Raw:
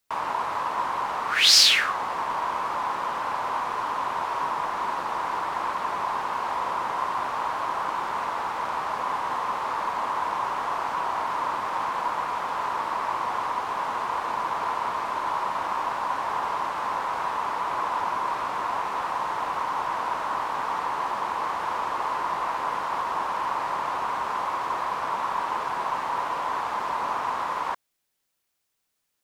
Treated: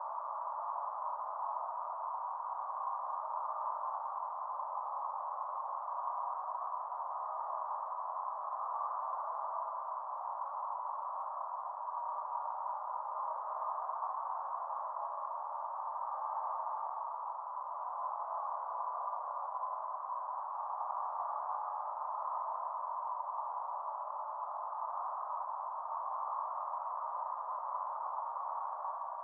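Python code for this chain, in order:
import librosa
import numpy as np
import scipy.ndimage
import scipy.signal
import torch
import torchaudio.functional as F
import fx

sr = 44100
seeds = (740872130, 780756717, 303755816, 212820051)

y = fx.over_compress(x, sr, threshold_db=-30.0, ratio=-0.5)
y = fx.paulstretch(y, sr, seeds[0], factor=7.3, window_s=0.25, from_s=23.77)
y = scipy.signal.sosfilt(scipy.signal.ellip(3, 1.0, 80, [600.0, 1200.0], 'bandpass', fs=sr, output='sos'), y)
y = y * librosa.db_to_amplitude(-8.0)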